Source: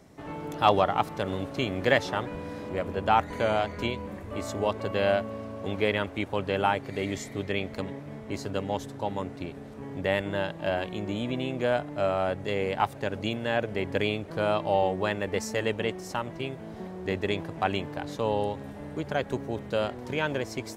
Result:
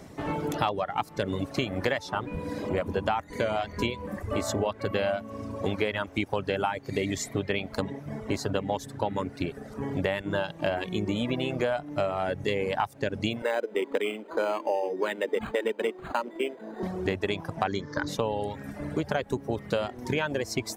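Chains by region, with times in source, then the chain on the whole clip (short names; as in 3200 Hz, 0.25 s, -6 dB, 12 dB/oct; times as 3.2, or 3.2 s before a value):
13.42–16.83 Chebyshev high-pass 220 Hz, order 5 + comb 2.1 ms, depth 32% + decimation joined by straight lines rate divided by 8×
17.67–18.08 synth low-pass 6600 Hz, resonance Q 3.7 + bell 710 Hz +10 dB 1.9 oct + fixed phaser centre 2700 Hz, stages 6
whole clip: reverb removal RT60 1.1 s; compressor 16:1, threshold -32 dBFS; gain +8.5 dB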